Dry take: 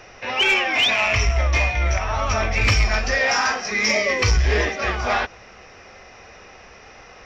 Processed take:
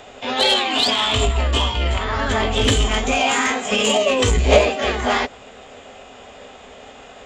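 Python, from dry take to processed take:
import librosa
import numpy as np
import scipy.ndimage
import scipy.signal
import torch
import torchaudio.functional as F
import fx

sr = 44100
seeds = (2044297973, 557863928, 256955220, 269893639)

y = fx.small_body(x, sr, hz=(260.0, 410.0), ring_ms=65, db=15)
y = fx.cheby_harmonics(y, sr, harmonics=(5,), levels_db=(-34,), full_scale_db=-1.5)
y = fx.formant_shift(y, sr, semitones=5)
y = F.gain(torch.from_numpy(y), -1.0).numpy()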